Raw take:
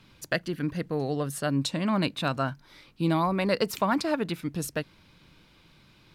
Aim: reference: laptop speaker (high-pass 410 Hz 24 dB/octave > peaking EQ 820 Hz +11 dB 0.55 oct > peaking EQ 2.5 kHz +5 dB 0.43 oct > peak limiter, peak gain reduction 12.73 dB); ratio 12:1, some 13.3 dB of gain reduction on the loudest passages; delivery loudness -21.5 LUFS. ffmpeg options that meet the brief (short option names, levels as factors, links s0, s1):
-af "acompressor=threshold=0.02:ratio=12,highpass=f=410:w=0.5412,highpass=f=410:w=1.3066,equalizer=f=820:t=o:w=0.55:g=11,equalizer=f=2500:t=o:w=0.43:g=5,volume=10.6,alimiter=limit=0.355:level=0:latency=1"